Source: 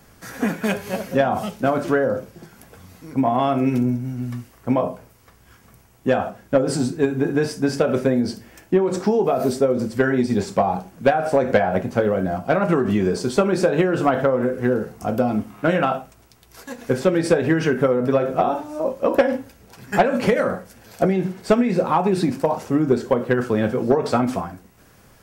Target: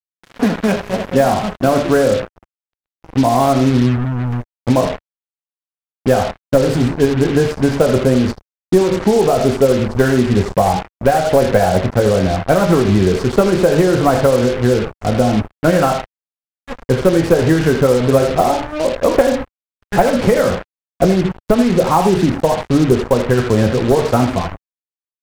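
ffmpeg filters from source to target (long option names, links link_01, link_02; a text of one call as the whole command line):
ffmpeg -i in.wav -filter_complex "[0:a]lowpass=frequency=1000:poles=1,asplit=2[link_01][link_02];[link_02]adelay=80,highpass=300,lowpass=3400,asoftclip=type=hard:threshold=-16dB,volume=-9dB[link_03];[link_01][link_03]amix=inputs=2:normalize=0,acrusher=bits=4:mix=0:aa=0.5,asubboost=boost=3.5:cutoff=100,alimiter=level_in=9dB:limit=-1dB:release=50:level=0:latency=1,volume=-1dB" out.wav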